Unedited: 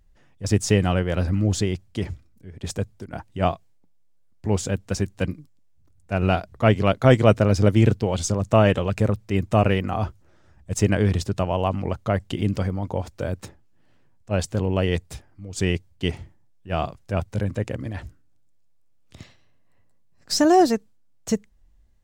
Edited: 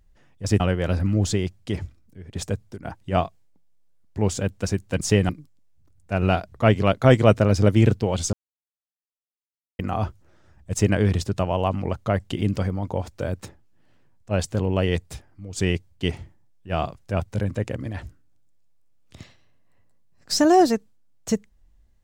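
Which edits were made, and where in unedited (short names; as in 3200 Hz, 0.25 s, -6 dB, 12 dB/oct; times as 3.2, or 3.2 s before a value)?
0.6–0.88 move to 5.29
8.33–9.79 mute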